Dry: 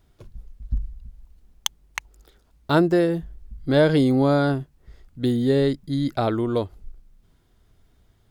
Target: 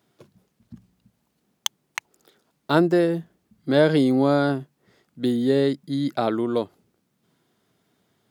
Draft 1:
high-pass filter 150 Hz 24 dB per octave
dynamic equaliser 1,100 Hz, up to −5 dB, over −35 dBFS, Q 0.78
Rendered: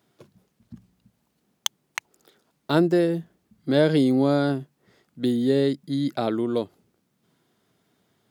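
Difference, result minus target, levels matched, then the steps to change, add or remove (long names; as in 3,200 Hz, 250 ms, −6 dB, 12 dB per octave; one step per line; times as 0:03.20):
1,000 Hz band −3.0 dB
remove: dynamic equaliser 1,100 Hz, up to −5 dB, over −35 dBFS, Q 0.78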